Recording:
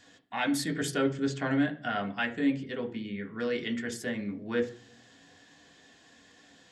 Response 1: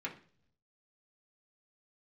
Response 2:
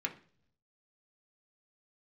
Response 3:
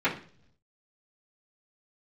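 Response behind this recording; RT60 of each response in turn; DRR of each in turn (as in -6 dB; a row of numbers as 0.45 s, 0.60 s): 2; 0.50 s, no single decay rate, 0.50 s; -4.0 dB, 1.0 dB, -12.5 dB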